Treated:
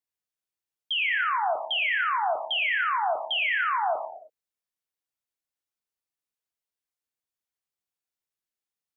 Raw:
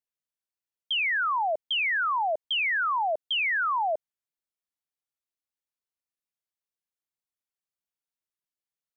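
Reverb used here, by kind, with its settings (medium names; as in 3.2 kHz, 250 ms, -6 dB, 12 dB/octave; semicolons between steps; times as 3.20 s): gated-style reverb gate 350 ms falling, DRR 3.5 dB; trim -1 dB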